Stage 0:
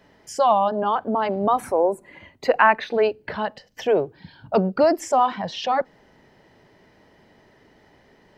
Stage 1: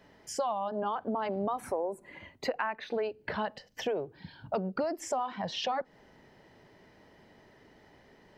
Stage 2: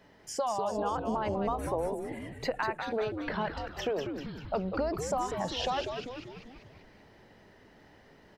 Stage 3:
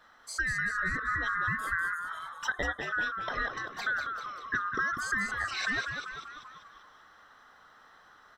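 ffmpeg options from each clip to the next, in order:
-af "acompressor=threshold=-25dB:ratio=10,volume=-3.5dB"
-filter_complex "[0:a]asplit=9[a][b][c][d][e][f][g][h][i];[b]adelay=195,afreqshift=-130,volume=-6dB[j];[c]adelay=390,afreqshift=-260,volume=-10.7dB[k];[d]adelay=585,afreqshift=-390,volume=-15.5dB[l];[e]adelay=780,afreqshift=-520,volume=-20.2dB[m];[f]adelay=975,afreqshift=-650,volume=-24.9dB[n];[g]adelay=1170,afreqshift=-780,volume=-29.7dB[o];[h]adelay=1365,afreqshift=-910,volume=-34.4dB[p];[i]adelay=1560,afreqshift=-1040,volume=-39.1dB[q];[a][j][k][l][m][n][o][p][q]amix=inputs=9:normalize=0"
-af "afftfilt=real='real(if(lt(b,960),b+48*(1-2*mod(floor(b/48),2)),b),0)':imag='imag(if(lt(b,960),b+48*(1-2*mod(floor(b/48),2)),b),0)':win_size=2048:overlap=0.75"

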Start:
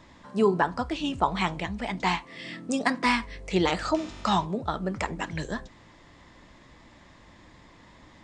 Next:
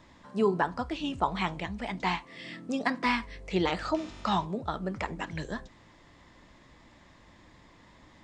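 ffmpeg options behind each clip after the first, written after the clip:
-filter_complex "[0:a]acrossover=split=5500[a][b];[b]acompressor=threshold=-54dB:ratio=4:attack=1:release=60[c];[a][c]amix=inputs=2:normalize=0,volume=-3.5dB"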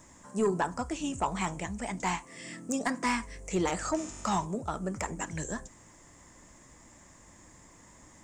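-af "highshelf=f=5.4k:t=q:w=3:g=11.5,asoftclip=type=tanh:threshold=-19dB"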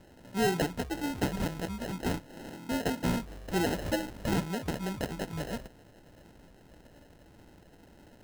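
-af "acrusher=samples=38:mix=1:aa=0.000001"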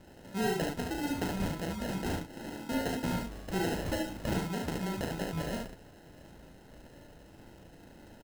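-af "acompressor=threshold=-33dB:ratio=2.5,aecho=1:1:37|72:0.596|0.668"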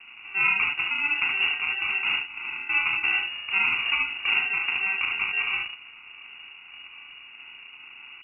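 -filter_complex "[0:a]lowpass=f=2.5k:t=q:w=0.5098,lowpass=f=2.5k:t=q:w=0.6013,lowpass=f=2.5k:t=q:w=0.9,lowpass=f=2.5k:t=q:w=2.563,afreqshift=-2900,acrossover=split=300[a][b];[a]acrusher=samples=30:mix=1:aa=0.000001[c];[c][b]amix=inputs=2:normalize=0,volume=8dB" -ar 48000 -c:a libopus -b:a 256k

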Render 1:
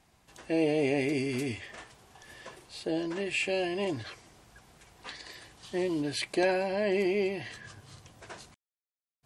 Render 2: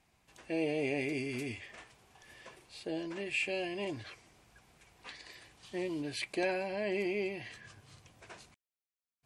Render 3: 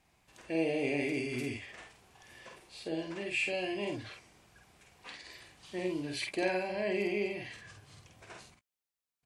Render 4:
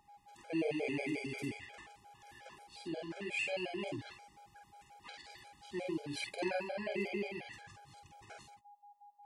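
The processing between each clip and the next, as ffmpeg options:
-af "equalizer=f=2.4k:t=o:w=0.41:g=5.5,volume=-6.5dB"
-af "aecho=1:1:49|66:0.631|0.15"
-af "aeval=exprs='val(0)+0.00251*sin(2*PI*820*n/s)':c=same,afftfilt=real='re*gt(sin(2*PI*5.6*pts/sr)*(1-2*mod(floor(b*sr/1024/420),2)),0)':imag='im*gt(sin(2*PI*5.6*pts/sr)*(1-2*mod(floor(b*sr/1024/420),2)),0)':win_size=1024:overlap=0.75,volume=-1dB"

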